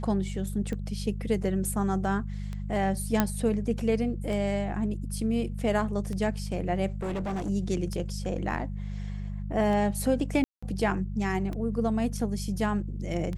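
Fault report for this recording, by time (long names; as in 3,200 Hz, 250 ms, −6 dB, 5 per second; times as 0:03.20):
mains hum 50 Hz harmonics 4 −34 dBFS
scratch tick 33 1/3 rpm −23 dBFS
0:03.20: click −8 dBFS
0:06.92–0:07.50: clipping −28 dBFS
0:10.44–0:10.62: drop-out 185 ms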